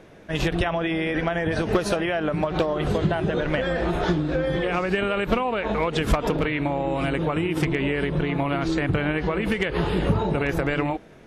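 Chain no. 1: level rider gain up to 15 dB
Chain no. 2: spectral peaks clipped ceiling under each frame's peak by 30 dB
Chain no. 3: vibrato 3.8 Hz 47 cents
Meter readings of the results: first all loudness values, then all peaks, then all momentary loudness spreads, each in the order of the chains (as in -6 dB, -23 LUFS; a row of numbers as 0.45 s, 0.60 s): -13.5 LUFS, -23.0 LUFS, -24.5 LUFS; -1.5 dBFS, -2.0 dBFS, -12.5 dBFS; 2 LU, 2 LU, 2 LU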